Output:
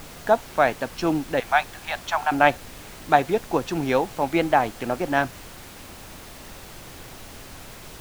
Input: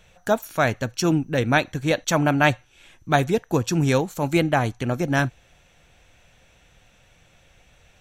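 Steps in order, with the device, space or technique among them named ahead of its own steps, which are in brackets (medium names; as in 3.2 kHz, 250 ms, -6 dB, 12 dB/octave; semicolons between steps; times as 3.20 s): 1.40–2.32 s: Chebyshev band-pass 740–7300 Hz, order 4; horn gramophone (band-pass 250–3500 Hz; peaking EQ 790 Hz +6 dB; wow and flutter; pink noise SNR 16 dB); trim -1 dB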